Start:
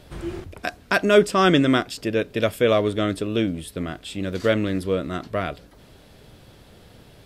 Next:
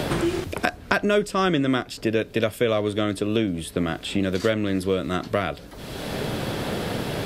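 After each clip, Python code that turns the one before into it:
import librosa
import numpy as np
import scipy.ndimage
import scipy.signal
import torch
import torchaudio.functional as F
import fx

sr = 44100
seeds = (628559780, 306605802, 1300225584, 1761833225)

y = fx.band_squash(x, sr, depth_pct=100)
y = F.gain(torch.from_numpy(y), -1.5).numpy()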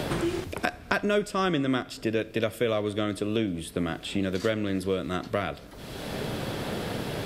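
y = fx.rev_schroeder(x, sr, rt60_s=1.0, comb_ms=27, drr_db=18.5)
y = F.gain(torch.from_numpy(y), -4.5).numpy()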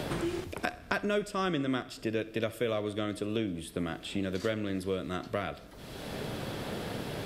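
y = fx.echo_feedback(x, sr, ms=64, feedback_pct=52, wet_db=-19.0)
y = F.gain(torch.from_numpy(y), -5.0).numpy()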